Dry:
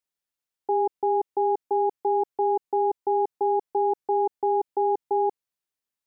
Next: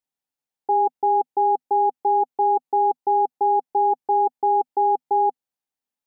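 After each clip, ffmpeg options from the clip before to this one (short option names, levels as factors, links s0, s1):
-af "equalizer=f=160:t=o:w=0.33:g=5,equalizer=f=250:t=o:w=0.33:g=9,equalizer=f=500:t=o:w=0.33:g=4,equalizer=f=800:t=o:w=0.33:g=10,volume=0.708"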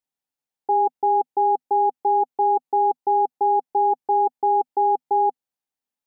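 -af anull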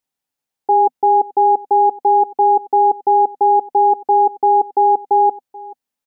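-af "aecho=1:1:433:0.0944,volume=2.11"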